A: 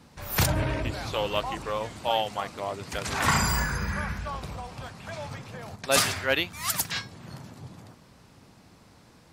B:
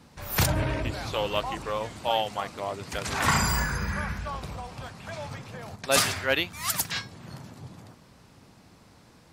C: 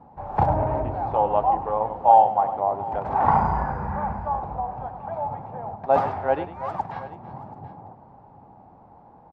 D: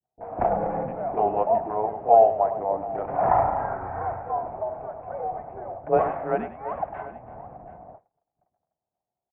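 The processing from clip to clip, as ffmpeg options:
-af anull
-af "lowpass=f=820:t=q:w=7.1,aecho=1:1:101|332|730:0.251|0.15|0.126"
-filter_complex "[0:a]agate=range=-37dB:threshold=-44dB:ratio=16:detection=peak,highpass=f=210:t=q:w=0.5412,highpass=f=210:t=q:w=1.307,lowpass=f=2.6k:t=q:w=0.5176,lowpass=f=2.6k:t=q:w=0.7071,lowpass=f=2.6k:t=q:w=1.932,afreqshift=-110,acrossover=split=420[a][b];[b]adelay=30[c];[a][c]amix=inputs=2:normalize=0"

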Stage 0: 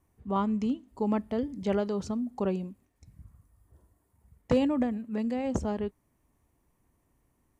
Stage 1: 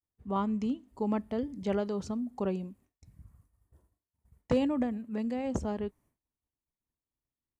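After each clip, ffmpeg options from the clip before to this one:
-af "agate=range=-33dB:threshold=-56dB:ratio=3:detection=peak,volume=-2.5dB"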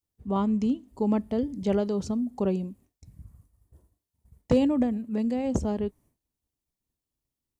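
-af "equalizer=f=1.5k:t=o:w=2:g=-7,volume=6.5dB"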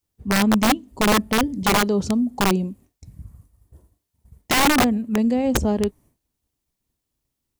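-af "aeval=exprs='(mod(9.44*val(0)+1,2)-1)/9.44':c=same,volume=7.5dB"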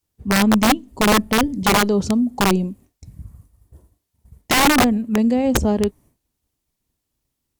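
-af "volume=2.5dB" -ar 48000 -c:a libopus -b:a 256k

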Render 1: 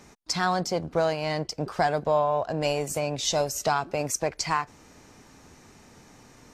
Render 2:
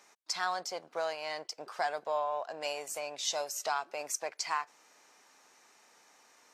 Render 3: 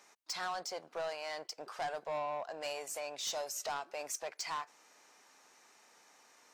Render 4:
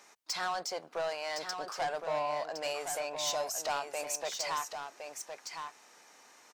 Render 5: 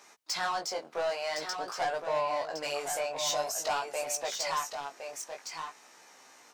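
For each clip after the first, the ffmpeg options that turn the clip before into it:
-af "highpass=690,volume=-6dB"
-af "asoftclip=type=tanh:threshold=-31dB,volume=-1dB"
-af "aecho=1:1:1063:0.447,volume=4dB"
-af "flanger=delay=15:depth=7:speed=0.49,volume=5.5dB"

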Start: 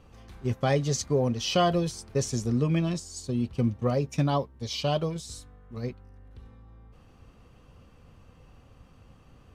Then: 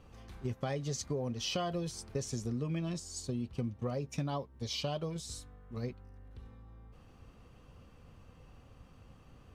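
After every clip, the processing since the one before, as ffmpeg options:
-af "acompressor=threshold=-31dB:ratio=4,volume=-2.5dB"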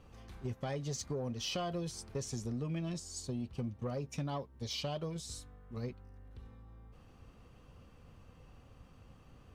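-af "asoftclip=type=tanh:threshold=-27.5dB,volume=-1dB"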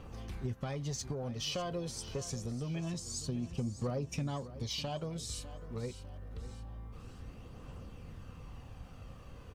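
-af "acompressor=threshold=-47dB:ratio=2,aphaser=in_gain=1:out_gain=1:delay=2.2:decay=0.3:speed=0.26:type=triangular,aecho=1:1:601|1202|1803|2404:0.188|0.0866|0.0399|0.0183,volume=6.5dB"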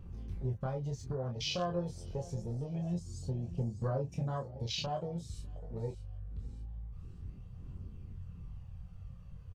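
-af "afwtdn=0.00891,equalizer=f=280:w=2.6:g=-9,aecho=1:1:23|34:0.562|0.355,volume=1.5dB"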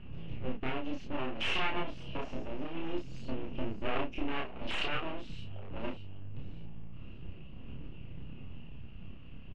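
-filter_complex "[0:a]aeval=exprs='abs(val(0))':c=same,lowpass=f=2.8k:t=q:w=7.6,asplit=2[a][b];[b]adelay=31,volume=-2dB[c];[a][c]amix=inputs=2:normalize=0,volume=1dB"

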